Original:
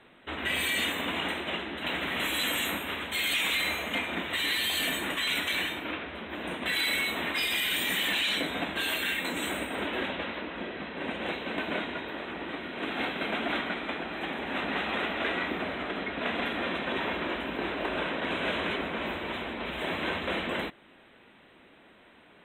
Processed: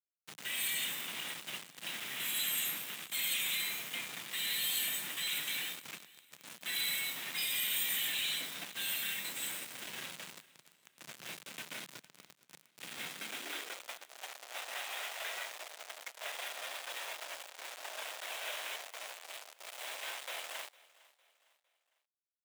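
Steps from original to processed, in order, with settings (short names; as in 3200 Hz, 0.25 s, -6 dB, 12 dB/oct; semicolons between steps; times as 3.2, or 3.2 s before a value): pre-emphasis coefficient 0.97; bit-crush 7-bit; high-pass sweep 160 Hz -> 630 Hz, 13.11–13.91; feedback echo 0.456 s, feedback 41%, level -22 dB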